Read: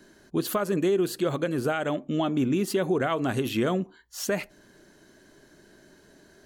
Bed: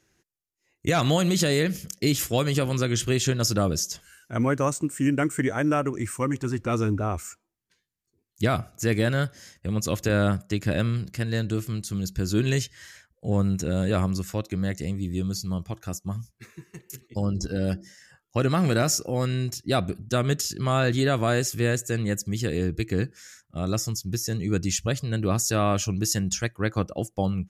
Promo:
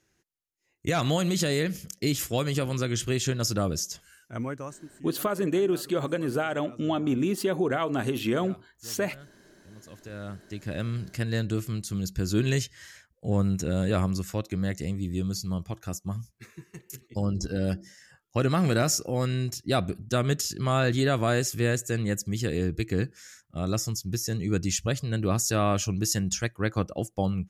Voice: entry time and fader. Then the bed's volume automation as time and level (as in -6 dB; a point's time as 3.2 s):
4.70 s, -1.0 dB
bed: 4.2 s -3.5 dB
5.08 s -24 dB
9.77 s -24 dB
11.13 s -1.5 dB